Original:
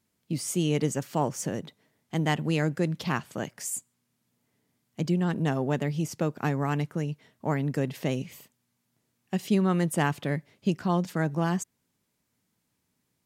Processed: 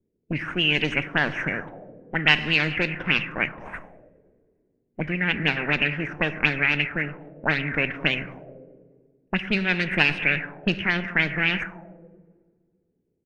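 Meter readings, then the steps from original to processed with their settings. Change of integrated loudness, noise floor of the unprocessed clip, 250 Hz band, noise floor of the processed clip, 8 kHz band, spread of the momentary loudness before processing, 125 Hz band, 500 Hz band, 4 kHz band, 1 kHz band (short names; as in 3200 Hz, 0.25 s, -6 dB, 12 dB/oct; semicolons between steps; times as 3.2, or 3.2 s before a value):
+5.5 dB, -77 dBFS, -1.5 dB, -73 dBFS, under -15 dB, 9 LU, -2.5 dB, -1.0 dB, +14.0 dB, +0.5 dB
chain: minimum comb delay 0.33 ms; low shelf 66 Hz +8 dB; harmonic-percussive split percussive +6 dB; band shelf 2000 Hz +13 dB 1.1 oct; on a send: feedback echo 0.211 s, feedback 50%, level -21.5 dB; on the sum: plate-style reverb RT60 2 s, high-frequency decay 0.8×, DRR 10.5 dB; envelope low-pass 420–4200 Hz up, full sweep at -16.5 dBFS; gain -4.5 dB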